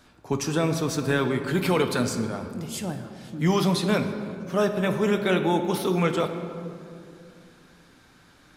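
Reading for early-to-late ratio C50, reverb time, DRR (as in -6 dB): 8.5 dB, 2.4 s, 6.0 dB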